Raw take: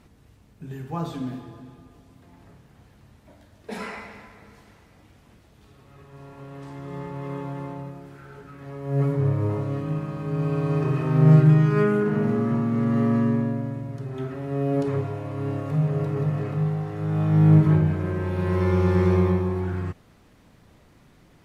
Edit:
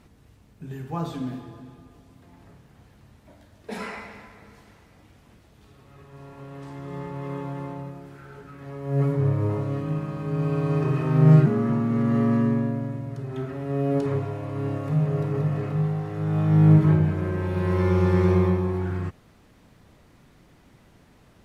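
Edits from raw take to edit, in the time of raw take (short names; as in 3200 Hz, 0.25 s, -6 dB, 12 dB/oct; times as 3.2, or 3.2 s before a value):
11.46–12.28 cut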